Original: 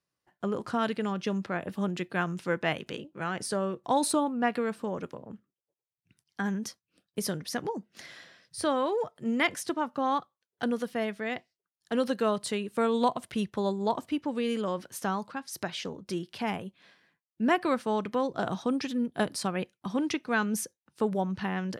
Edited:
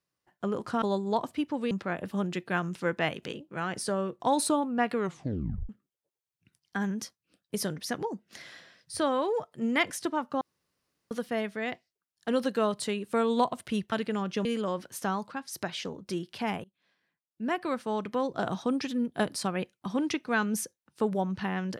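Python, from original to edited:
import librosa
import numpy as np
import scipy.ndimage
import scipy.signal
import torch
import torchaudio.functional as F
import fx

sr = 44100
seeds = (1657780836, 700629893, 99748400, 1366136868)

y = fx.edit(x, sr, fx.swap(start_s=0.82, length_s=0.53, other_s=13.56, other_length_s=0.89),
    fx.tape_stop(start_s=4.6, length_s=0.73),
    fx.room_tone_fill(start_s=10.05, length_s=0.7),
    fx.fade_in_from(start_s=16.64, length_s=1.74, floor_db=-23.5), tone=tone)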